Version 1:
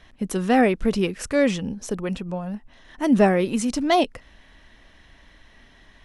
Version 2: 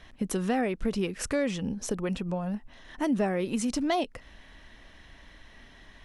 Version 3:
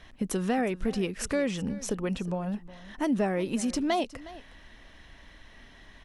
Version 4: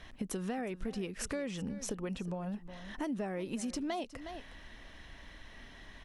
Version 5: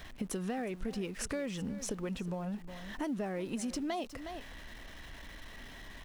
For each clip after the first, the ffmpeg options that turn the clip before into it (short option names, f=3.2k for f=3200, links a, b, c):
-af "acompressor=threshold=-27dB:ratio=3"
-af "aecho=1:1:363:0.126"
-af "acompressor=threshold=-37dB:ratio=3"
-af "aeval=exprs='val(0)+0.5*0.00282*sgn(val(0))':c=same"